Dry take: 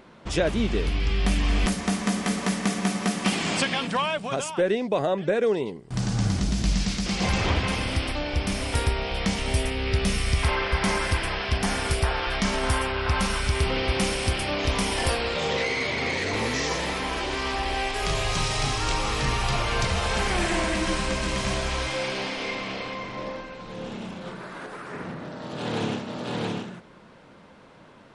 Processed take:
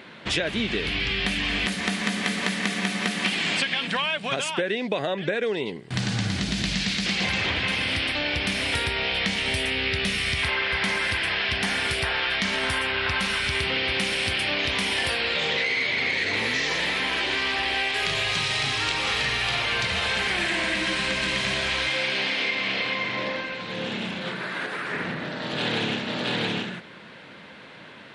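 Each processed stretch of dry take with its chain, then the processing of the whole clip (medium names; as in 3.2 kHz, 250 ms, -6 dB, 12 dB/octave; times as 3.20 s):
19.02–19.66 s: peaking EQ 150 Hz -6 dB 0.59 oct + doubling 50 ms -5 dB
whole clip: high-pass 100 Hz 12 dB/octave; high-order bell 2.6 kHz +9.5 dB; compression, threshold -26 dBFS; trim +3.5 dB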